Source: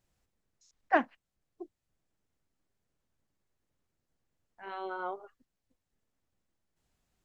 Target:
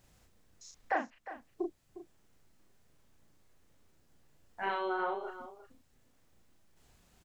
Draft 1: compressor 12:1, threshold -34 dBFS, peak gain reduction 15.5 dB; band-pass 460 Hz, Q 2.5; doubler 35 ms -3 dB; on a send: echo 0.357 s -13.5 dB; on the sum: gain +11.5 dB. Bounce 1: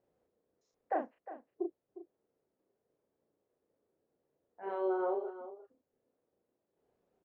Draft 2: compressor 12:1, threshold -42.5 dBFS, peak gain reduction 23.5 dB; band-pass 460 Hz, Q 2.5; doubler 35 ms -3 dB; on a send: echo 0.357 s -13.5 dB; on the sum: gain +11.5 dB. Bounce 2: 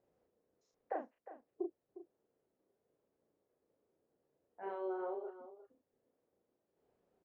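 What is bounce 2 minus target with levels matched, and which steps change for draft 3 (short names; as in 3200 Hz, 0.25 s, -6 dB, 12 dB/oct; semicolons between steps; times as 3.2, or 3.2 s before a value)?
500 Hz band +3.0 dB
remove: band-pass 460 Hz, Q 2.5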